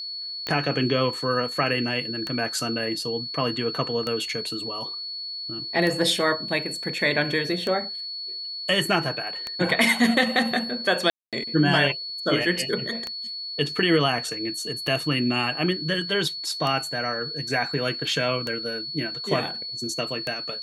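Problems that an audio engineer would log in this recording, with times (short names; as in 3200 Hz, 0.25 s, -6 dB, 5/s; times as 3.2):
tick 33 1/3 rpm -14 dBFS
tone 4400 Hz -31 dBFS
11.1–11.33 gap 0.227 s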